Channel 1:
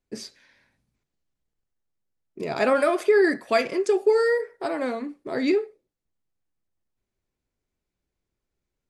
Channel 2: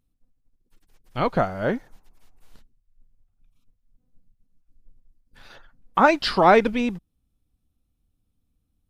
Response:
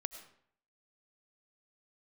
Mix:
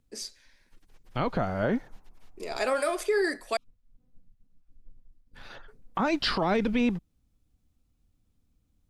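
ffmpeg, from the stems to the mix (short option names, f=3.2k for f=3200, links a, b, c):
-filter_complex "[0:a]bass=f=250:g=-13,treble=f=4k:g=10,volume=-5.5dB,asplit=3[a][b][c];[a]atrim=end=3.57,asetpts=PTS-STARTPTS,afade=t=out:st=3.566:d=0.004:c=hsin[d];[b]atrim=start=3.57:end=5.68,asetpts=PTS-STARTPTS,volume=0[e];[c]atrim=start=5.68,asetpts=PTS-STARTPTS,afade=t=in:d=0.004:c=hsin[f];[d][e][f]concat=n=3:v=0:a=1[g];[1:a]highshelf=f=7.1k:g=-9.5,volume=2dB[h];[g][h]amix=inputs=2:normalize=0,acrossover=split=310|3000[i][j][k];[j]acompressor=threshold=-20dB:ratio=6[l];[i][l][k]amix=inputs=3:normalize=0,alimiter=limit=-17dB:level=0:latency=1:release=47"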